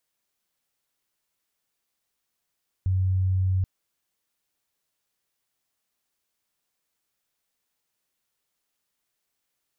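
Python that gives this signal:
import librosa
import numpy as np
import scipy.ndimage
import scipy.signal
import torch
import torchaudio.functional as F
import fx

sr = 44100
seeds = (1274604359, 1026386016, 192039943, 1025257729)

y = 10.0 ** (-20.0 / 20.0) * np.sin(2.0 * np.pi * (93.6 * (np.arange(round(0.78 * sr)) / sr)))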